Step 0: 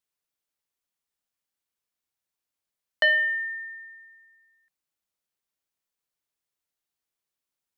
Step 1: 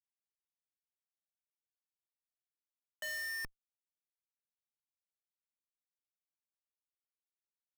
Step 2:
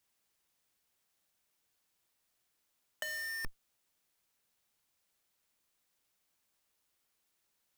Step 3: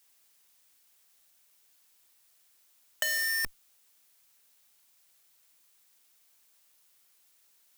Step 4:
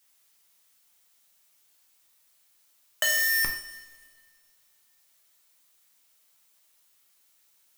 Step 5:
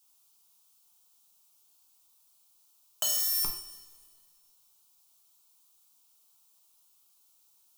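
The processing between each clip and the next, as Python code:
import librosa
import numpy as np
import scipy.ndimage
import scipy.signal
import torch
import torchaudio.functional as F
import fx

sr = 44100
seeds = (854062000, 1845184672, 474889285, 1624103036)

y1 = fx.schmitt(x, sr, flips_db=-28.0)
y1 = y1 * 10.0 ** (-4.5 / 20.0)
y2 = fx.over_compress(y1, sr, threshold_db=-45.0, ratio=-0.5)
y2 = y2 * 10.0 ** (9.0 / 20.0)
y3 = fx.tilt_eq(y2, sr, slope=2.0)
y3 = y3 * 10.0 ** (7.0 / 20.0)
y4 = fx.rev_double_slope(y3, sr, seeds[0], early_s=0.45, late_s=2.3, knee_db=-17, drr_db=1.0)
y4 = fx.leveller(y4, sr, passes=1)
y5 = fx.fixed_phaser(y4, sr, hz=370.0, stages=8)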